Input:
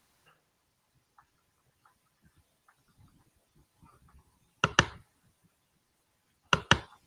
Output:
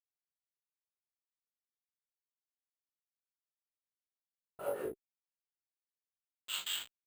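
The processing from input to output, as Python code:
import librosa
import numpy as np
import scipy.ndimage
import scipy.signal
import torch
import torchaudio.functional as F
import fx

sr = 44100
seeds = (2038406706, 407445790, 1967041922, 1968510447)

p1 = fx.phase_scramble(x, sr, seeds[0], window_ms=100)
p2 = scipy.signal.sosfilt(scipy.signal.butter(2, 230.0, 'highpass', fs=sr, output='sos'), p1)
p3 = fx.high_shelf(p2, sr, hz=5700.0, db=3.0)
p4 = fx.hum_notches(p3, sr, base_hz=60, count=5)
p5 = fx.level_steps(p4, sr, step_db=17)
p6 = p4 + (p5 * 10.0 ** (2.5 / 20.0))
p7 = fx.schmitt(p6, sr, flips_db=-31.5)
p8 = fx.rotary_switch(p7, sr, hz=0.85, then_hz=8.0, switch_at_s=2.8)
p9 = np.clip(10.0 ** (34.5 / 20.0) * p8, -1.0, 1.0) / 10.0 ** (34.5 / 20.0)
p10 = fx.wah_lfo(p9, sr, hz=0.34, low_hz=330.0, high_hz=3500.0, q=5.1)
p11 = p10 + fx.room_early_taps(p10, sr, ms=(21, 42, 58), db=(-3.5, -3.0, -8.5), dry=0)
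p12 = np.repeat(scipy.signal.resample_poly(p11, 1, 4), 4)[:len(p11)]
y = p12 * 10.0 ** (10.0 / 20.0)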